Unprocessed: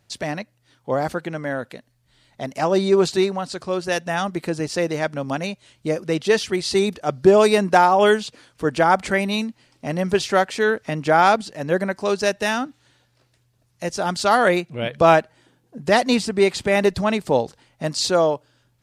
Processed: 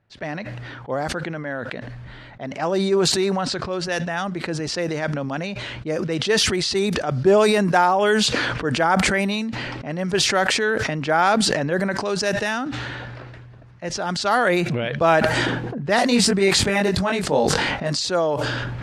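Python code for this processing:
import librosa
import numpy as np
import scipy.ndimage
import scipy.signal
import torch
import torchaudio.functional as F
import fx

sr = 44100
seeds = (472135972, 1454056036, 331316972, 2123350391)

y = fx.doubler(x, sr, ms=21.0, db=-2.5, at=(15.96, 17.96))
y = fx.env_lowpass(y, sr, base_hz=2000.0, full_db=-15.5)
y = fx.peak_eq(y, sr, hz=1600.0, db=3.5, octaves=0.65)
y = fx.sustainer(y, sr, db_per_s=20.0)
y = y * librosa.db_to_amplitude(-4.0)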